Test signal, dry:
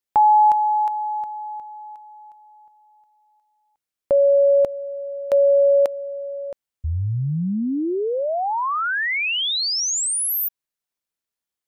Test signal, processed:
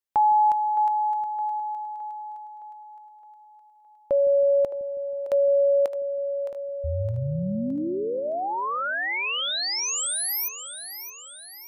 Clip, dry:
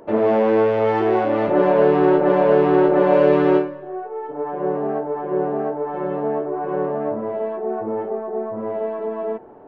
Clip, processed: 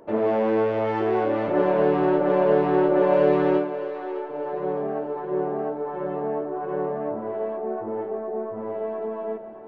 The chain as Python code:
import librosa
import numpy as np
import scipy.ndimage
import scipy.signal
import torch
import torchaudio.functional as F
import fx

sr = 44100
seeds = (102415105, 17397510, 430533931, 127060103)

y = fx.echo_split(x, sr, split_hz=380.0, low_ms=161, high_ms=615, feedback_pct=52, wet_db=-11.0)
y = F.gain(torch.from_numpy(y), -5.0).numpy()